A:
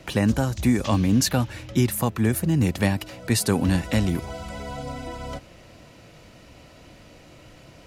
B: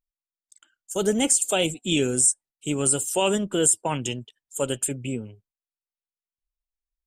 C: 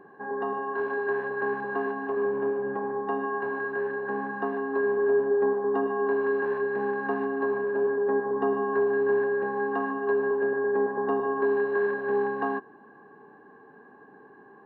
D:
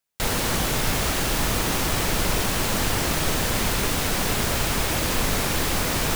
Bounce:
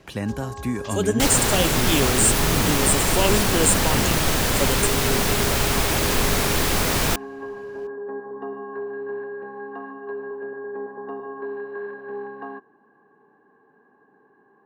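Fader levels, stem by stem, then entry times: -6.5, 0.0, -7.0, +2.5 dB; 0.00, 0.00, 0.00, 1.00 s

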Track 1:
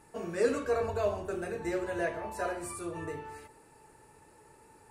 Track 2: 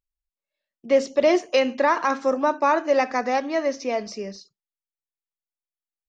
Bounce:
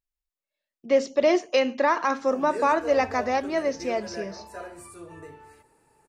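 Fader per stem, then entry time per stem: -5.0, -2.0 dB; 2.15, 0.00 s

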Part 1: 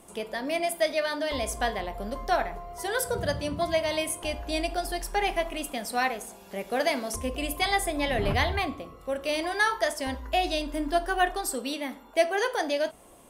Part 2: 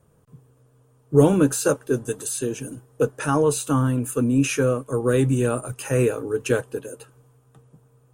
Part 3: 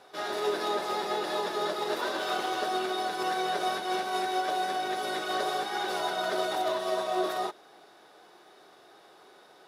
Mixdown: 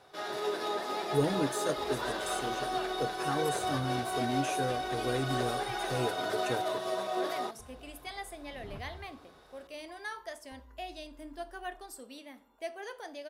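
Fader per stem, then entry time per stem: -16.0, -14.0, -4.0 dB; 0.45, 0.00, 0.00 s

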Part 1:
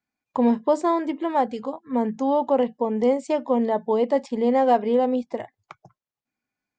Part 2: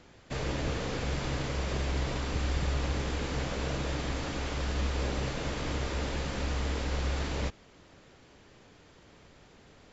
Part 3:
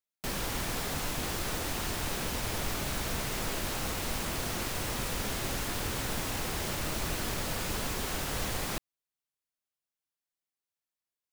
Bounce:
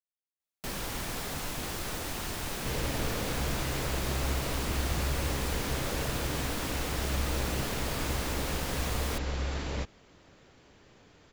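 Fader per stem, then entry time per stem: off, -1.5 dB, -2.0 dB; off, 2.35 s, 0.40 s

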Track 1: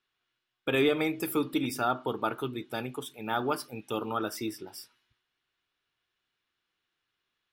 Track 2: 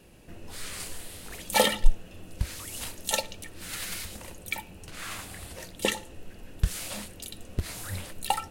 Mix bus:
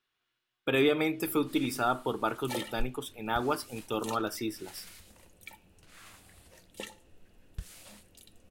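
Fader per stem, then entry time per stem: 0.0, -15.0 dB; 0.00, 0.95 s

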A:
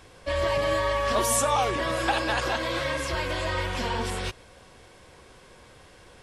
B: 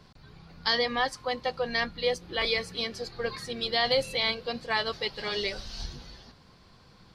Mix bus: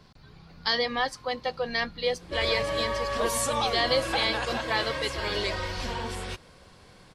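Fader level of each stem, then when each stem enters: -4.5, 0.0 dB; 2.05, 0.00 s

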